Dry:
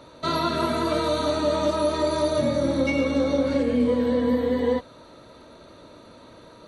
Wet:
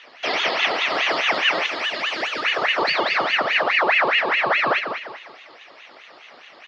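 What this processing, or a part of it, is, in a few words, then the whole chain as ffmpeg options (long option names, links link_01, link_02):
voice changer toy: -filter_complex "[0:a]asettb=1/sr,asplit=3[link_01][link_02][link_03];[link_01]atrim=end=1.664[link_04];[link_02]atrim=start=1.66:end=2.45,asetpts=PTS-STARTPTS,afade=type=in:duration=0.004:curve=qsin,afade=type=out:start_time=0.786:duration=0.004:curve=qsin,highpass=frequency=840:poles=1[link_05];[link_03]atrim=start=2.446[link_06];[link_04][link_05]acrossfade=duration=0.004:curve1=hsin:curve2=qsin[link_07];[link_07][link_06]acrossfade=duration=0.004:curve1=qsin:curve2=hsin,aecho=1:1:193|386|579|772:0.422|0.16|0.0609|0.0231,aeval=exprs='val(0)*sin(2*PI*1500*n/s+1500*0.6/4.8*sin(2*PI*4.8*n/s))':channel_layout=same,highpass=410,equalizer=frequency=630:width_type=q:width=4:gain=4,equalizer=frequency=1000:width_type=q:width=4:gain=-4,equalizer=frequency=1500:width_type=q:width=4:gain=-6,equalizer=frequency=4200:width_type=q:width=4:gain=5,lowpass=frequency=4900:width=0.5412,lowpass=frequency=4900:width=1.3066,volume=6dB"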